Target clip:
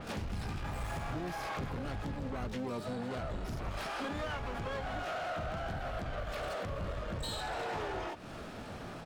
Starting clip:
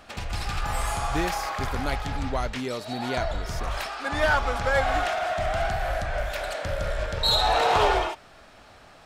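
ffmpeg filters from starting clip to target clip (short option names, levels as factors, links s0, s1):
-filter_complex "[0:a]equalizer=f=170:t=o:w=2.9:g=13.5,acompressor=threshold=0.0282:ratio=12,asoftclip=type=tanh:threshold=0.0178,asplit=3[s0][s1][s2];[s1]asetrate=35002,aresample=44100,atempo=1.25992,volume=0.316[s3];[s2]asetrate=88200,aresample=44100,atempo=0.5,volume=0.501[s4];[s0][s3][s4]amix=inputs=3:normalize=0,adynamicequalizer=threshold=0.00178:dfrequency=5200:dqfactor=0.7:tfrequency=5200:tqfactor=0.7:attack=5:release=100:ratio=0.375:range=2:mode=cutabove:tftype=highshelf"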